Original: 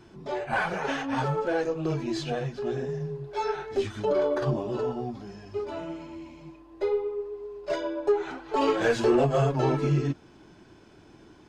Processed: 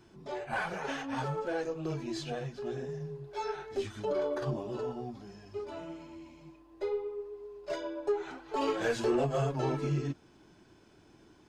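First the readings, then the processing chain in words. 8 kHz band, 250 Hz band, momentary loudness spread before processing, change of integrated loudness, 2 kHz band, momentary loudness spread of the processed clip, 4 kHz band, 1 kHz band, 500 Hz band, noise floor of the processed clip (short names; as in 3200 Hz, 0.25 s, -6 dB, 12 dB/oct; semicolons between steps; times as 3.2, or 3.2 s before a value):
n/a, -7.0 dB, 14 LU, -7.0 dB, -6.5 dB, 14 LU, -5.5 dB, -7.0 dB, -7.0 dB, -61 dBFS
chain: high shelf 6300 Hz +6.5 dB; gain -7 dB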